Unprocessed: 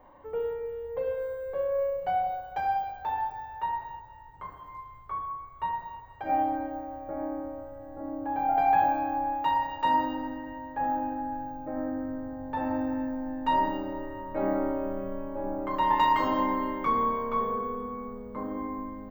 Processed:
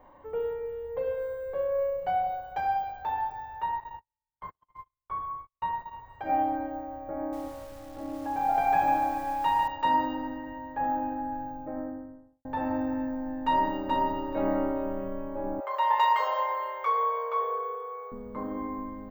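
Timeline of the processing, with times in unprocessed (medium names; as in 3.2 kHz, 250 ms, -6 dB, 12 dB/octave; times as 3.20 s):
3.80–5.93 s: gate -42 dBFS, range -45 dB
7.18–9.68 s: bit-crushed delay 147 ms, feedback 55%, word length 8-bit, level -5.5 dB
11.46–12.45 s: studio fade out
13.45–14.22 s: echo throw 430 ms, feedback 20%, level -2 dB
15.60–18.12 s: brick-wall FIR high-pass 410 Hz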